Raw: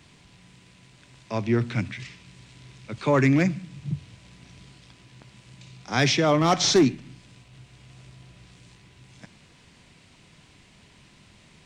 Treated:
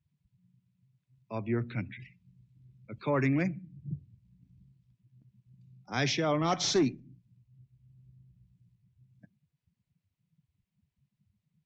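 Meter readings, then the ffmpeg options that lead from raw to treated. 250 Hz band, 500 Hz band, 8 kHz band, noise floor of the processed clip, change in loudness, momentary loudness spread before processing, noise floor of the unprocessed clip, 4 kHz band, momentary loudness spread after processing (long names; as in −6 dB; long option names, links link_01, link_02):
−8.0 dB, −8.0 dB, −8.5 dB, −85 dBFS, −8.0 dB, 17 LU, −55 dBFS, −8.5 dB, 16 LU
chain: -af "afftdn=noise_reduction=31:noise_floor=-39,volume=-8dB"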